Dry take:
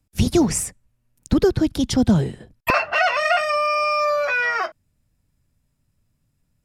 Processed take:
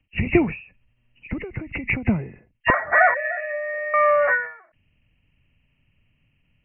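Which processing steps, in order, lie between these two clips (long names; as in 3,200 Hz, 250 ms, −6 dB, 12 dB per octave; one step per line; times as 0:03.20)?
hearing-aid frequency compression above 1,700 Hz 4 to 1
0:03.14–0:03.94: formant filter e
every ending faded ahead of time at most 120 dB per second
level +3 dB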